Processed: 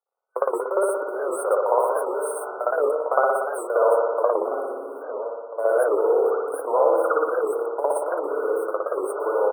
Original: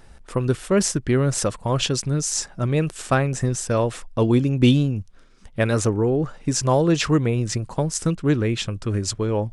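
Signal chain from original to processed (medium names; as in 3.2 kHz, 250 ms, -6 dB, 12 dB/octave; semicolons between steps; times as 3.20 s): jump at every zero crossing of -29 dBFS; doubling 15 ms -13 dB; in parallel at +1 dB: peak limiter -16 dBFS, peak gain reduction 11 dB; on the sum: gate -18 dBFS, range -54 dB; dynamic bell 780 Hz, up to -5 dB, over -27 dBFS, Q 0.72; FFT band-reject 1.5–8.4 kHz; compression 12:1, threshold -18 dBFS, peak gain reduction 10 dB; steep high-pass 450 Hz 48 dB/octave; treble shelf 2.2 kHz -10.5 dB; echo from a far wall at 230 m, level -11 dB; spring tank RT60 1.4 s, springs 58 ms, chirp 25 ms, DRR -9 dB; warped record 78 rpm, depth 160 cents; trim +1.5 dB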